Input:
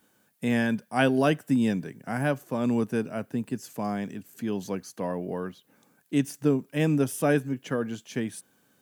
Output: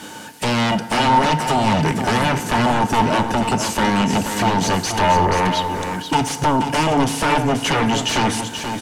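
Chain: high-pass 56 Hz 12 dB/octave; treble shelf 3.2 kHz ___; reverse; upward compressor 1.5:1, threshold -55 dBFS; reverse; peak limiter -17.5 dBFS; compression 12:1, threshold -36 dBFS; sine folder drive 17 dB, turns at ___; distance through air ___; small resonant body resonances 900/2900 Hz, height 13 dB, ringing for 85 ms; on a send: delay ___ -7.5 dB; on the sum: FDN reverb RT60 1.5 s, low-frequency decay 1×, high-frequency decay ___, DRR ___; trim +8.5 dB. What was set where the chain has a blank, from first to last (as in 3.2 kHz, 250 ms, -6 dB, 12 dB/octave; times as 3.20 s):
+10 dB, -23.5 dBFS, 73 m, 481 ms, 0.55×, 10.5 dB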